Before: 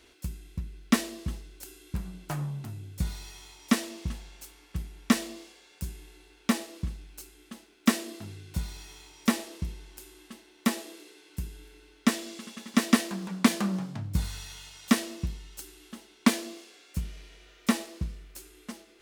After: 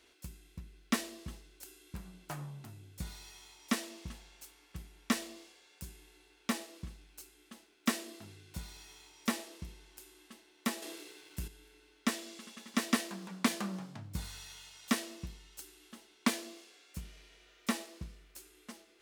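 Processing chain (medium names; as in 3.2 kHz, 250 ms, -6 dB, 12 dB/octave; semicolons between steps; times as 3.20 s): bass shelf 250 Hz -7.5 dB; 10.82–11.48 s: waveshaping leveller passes 2; trim -5.5 dB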